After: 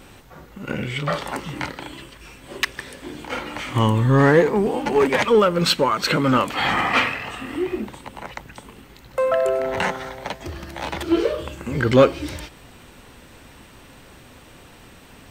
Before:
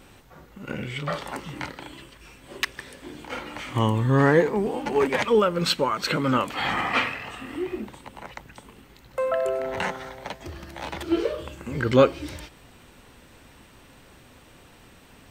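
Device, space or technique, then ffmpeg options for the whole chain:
parallel distortion: -filter_complex "[0:a]asplit=2[link_01][link_02];[link_02]asoftclip=type=hard:threshold=-20dB,volume=-5dB[link_03];[link_01][link_03]amix=inputs=2:normalize=0,volume=1.5dB"

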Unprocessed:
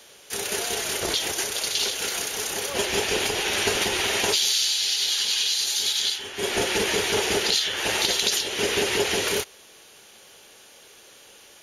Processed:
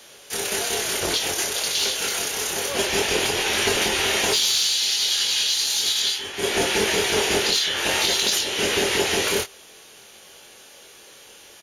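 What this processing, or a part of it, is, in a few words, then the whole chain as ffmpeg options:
saturation between pre-emphasis and de-emphasis: -filter_complex "[0:a]highshelf=frequency=4300:gain=10.5,asoftclip=type=tanh:threshold=-10dB,highshelf=frequency=4300:gain=-10.5,asplit=2[link_01][link_02];[link_02]adelay=23,volume=-5dB[link_03];[link_01][link_03]amix=inputs=2:normalize=0,volume=2dB"

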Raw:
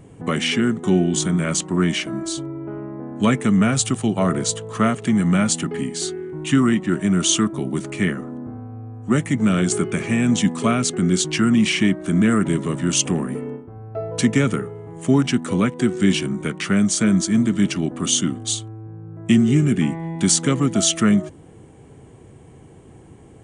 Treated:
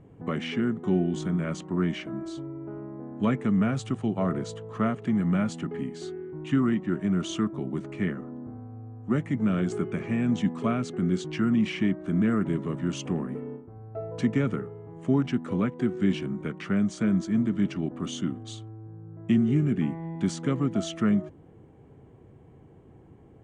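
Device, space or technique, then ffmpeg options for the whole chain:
through cloth: -af "lowpass=7300,highshelf=frequency=3300:gain=-17,volume=-7dB"

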